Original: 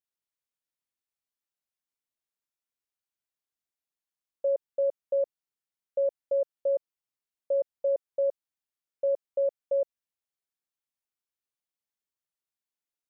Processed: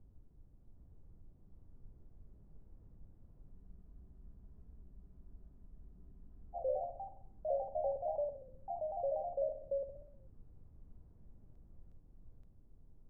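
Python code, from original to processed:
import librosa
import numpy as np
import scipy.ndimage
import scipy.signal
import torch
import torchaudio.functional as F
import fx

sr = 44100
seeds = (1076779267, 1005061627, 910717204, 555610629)

y = fx.tilt_eq(x, sr, slope=3.0)
y = fx.echo_feedback(y, sr, ms=64, feedback_pct=59, wet_db=-8)
y = fx.dmg_noise_colour(y, sr, seeds[0], colour='brown', level_db=-59.0)
y = scipy.signal.sosfilt(scipy.signal.bessel(2, 580.0, 'lowpass', norm='mag', fs=sr, output='sos'), y)
y = fx.low_shelf(y, sr, hz=270.0, db=8.0)
y = fx.echo_pitch(y, sr, ms=764, semitones=2, count=3, db_per_echo=-3.0)
y = fx.spec_freeze(y, sr, seeds[1], at_s=3.52, hold_s=3.04)
y = fx.record_warp(y, sr, rpm=33.33, depth_cents=100.0)
y = y * librosa.db_to_amplitude(-6.0)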